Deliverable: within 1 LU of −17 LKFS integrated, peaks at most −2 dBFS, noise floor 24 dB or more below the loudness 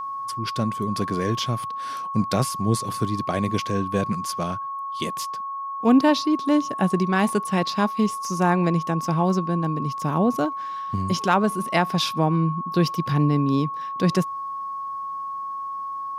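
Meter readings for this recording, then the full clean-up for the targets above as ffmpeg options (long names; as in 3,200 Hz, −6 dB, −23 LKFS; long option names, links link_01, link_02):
interfering tone 1,100 Hz; level of the tone −28 dBFS; integrated loudness −24.0 LKFS; sample peak −6.5 dBFS; target loudness −17.0 LKFS
→ -af "bandreject=frequency=1100:width=30"
-af "volume=7dB,alimiter=limit=-2dB:level=0:latency=1"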